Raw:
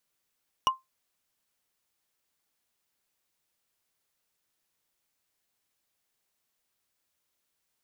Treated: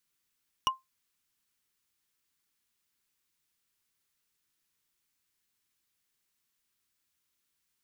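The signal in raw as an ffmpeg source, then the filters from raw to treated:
-f lavfi -i "aevalsrc='0.158*pow(10,-3*t/0.17)*sin(2*PI*1050*t)+0.0891*pow(10,-3*t/0.05)*sin(2*PI*2894.8*t)+0.0501*pow(10,-3*t/0.022)*sin(2*PI*5674.2*t)+0.0282*pow(10,-3*t/0.012)*sin(2*PI*9379.6*t)+0.0158*pow(10,-3*t/0.008)*sin(2*PI*14007*t)':duration=0.45:sample_rate=44100"
-af "equalizer=frequency=640:width=1.7:gain=-12.5"

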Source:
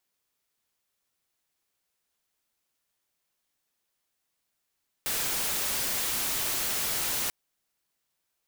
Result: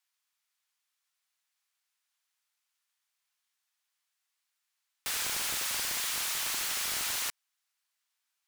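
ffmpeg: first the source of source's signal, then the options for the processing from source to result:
-f lavfi -i "anoisesrc=color=white:amplitude=0.058:duration=2.24:sample_rate=44100:seed=1"
-filter_complex "[0:a]highshelf=frequency=12000:gain=-8.5,acrossover=split=840[link_01][link_02];[link_01]acrusher=bits=5:mix=0:aa=0.5[link_03];[link_03][link_02]amix=inputs=2:normalize=0"

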